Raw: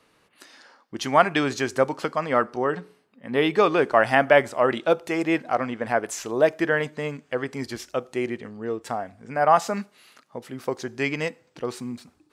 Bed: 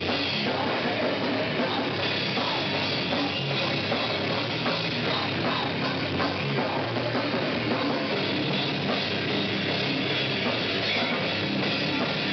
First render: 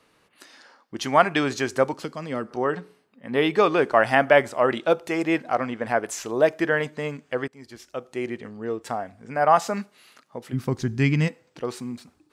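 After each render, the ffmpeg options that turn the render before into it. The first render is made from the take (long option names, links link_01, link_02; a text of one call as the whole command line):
ffmpeg -i in.wav -filter_complex "[0:a]asettb=1/sr,asplit=3[link_01][link_02][link_03];[link_01]atrim=end=1.934[link_04];[link_02]atrim=start=1.93:end=2.51,asetpts=PTS-STARTPTS,afade=type=in:duration=0.004:curve=qsin,afade=type=out:start_time=0.576:duration=0.004:curve=qsin,acrossover=split=390|3000[link_05][link_06][link_07];[link_06]acompressor=threshold=-56dB:ratio=1.5:attack=3.2:release=140:knee=2.83:detection=peak[link_08];[link_05][link_08][link_07]amix=inputs=3:normalize=0[link_09];[link_03]atrim=start=2.506[link_10];[link_04][link_09]acrossfade=duration=0.004:curve1=hsin:curve2=qsin[link_11];[link_11][link_10]acrossfade=duration=0.004:curve1=qsin:curve2=hsin,asplit=3[link_12][link_13][link_14];[link_12]afade=type=out:start_time=10.52:duration=0.02[link_15];[link_13]asubboost=boost=11:cutoff=160,afade=type=in:start_time=10.52:duration=0.02,afade=type=out:start_time=11.27:duration=0.02[link_16];[link_14]afade=type=in:start_time=11.27:duration=0.02[link_17];[link_15][link_16][link_17]amix=inputs=3:normalize=0,asplit=2[link_18][link_19];[link_18]atrim=end=7.48,asetpts=PTS-STARTPTS,afade=type=out:start_time=7.476:duration=0.004:curve=hsin:silence=0.0841395[link_20];[link_19]atrim=start=7.48,asetpts=PTS-STARTPTS,afade=type=in:duration=1:silence=0.0841395[link_21];[link_20][link_21]concat=n=2:v=0:a=1" out.wav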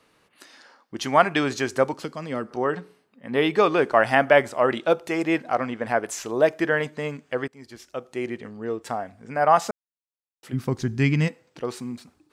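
ffmpeg -i in.wav -filter_complex "[0:a]asplit=3[link_01][link_02][link_03];[link_01]atrim=end=9.71,asetpts=PTS-STARTPTS,afade=type=out:start_time=9.706:duration=0.004:curve=hsin[link_04];[link_02]atrim=start=9.71:end=10.43,asetpts=PTS-STARTPTS,volume=0[link_05];[link_03]atrim=start=10.43,asetpts=PTS-STARTPTS,afade=type=in:duration=0.004:curve=hsin[link_06];[link_04][link_05][link_06]concat=n=3:v=0:a=1" out.wav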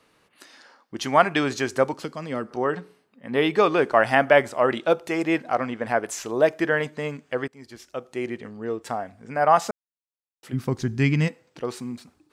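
ffmpeg -i in.wav -af anull out.wav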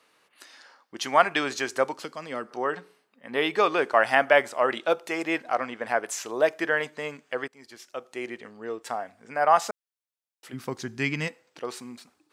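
ffmpeg -i in.wav -af "highpass=frequency=620:poles=1" out.wav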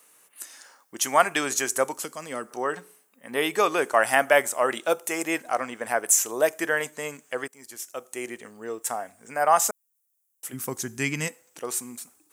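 ffmpeg -i in.wav -af "aexciter=amount=7.5:drive=5.6:freq=6400" out.wav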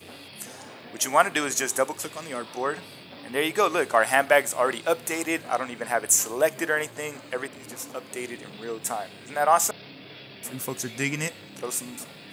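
ffmpeg -i in.wav -i bed.wav -filter_complex "[1:a]volume=-18dB[link_01];[0:a][link_01]amix=inputs=2:normalize=0" out.wav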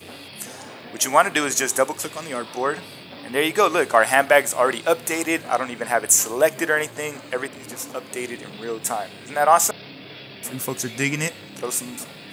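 ffmpeg -i in.wav -af "volume=4.5dB,alimiter=limit=-2dB:level=0:latency=1" out.wav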